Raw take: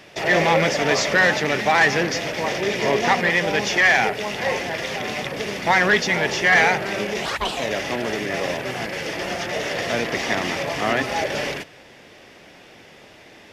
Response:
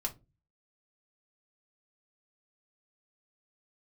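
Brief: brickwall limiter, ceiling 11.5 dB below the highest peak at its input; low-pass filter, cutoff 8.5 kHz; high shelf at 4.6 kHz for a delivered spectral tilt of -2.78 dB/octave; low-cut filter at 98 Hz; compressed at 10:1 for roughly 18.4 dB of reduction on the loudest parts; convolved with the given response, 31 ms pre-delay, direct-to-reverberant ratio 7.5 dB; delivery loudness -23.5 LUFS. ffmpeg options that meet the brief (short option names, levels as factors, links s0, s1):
-filter_complex "[0:a]highpass=98,lowpass=8500,highshelf=f=4600:g=6,acompressor=threshold=0.0282:ratio=10,alimiter=level_in=2.11:limit=0.0631:level=0:latency=1,volume=0.473,asplit=2[s0][s1];[1:a]atrim=start_sample=2205,adelay=31[s2];[s1][s2]afir=irnorm=-1:irlink=0,volume=0.355[s3];[s0][s3]amix=inputs=2:normalize=0,volume=5.31"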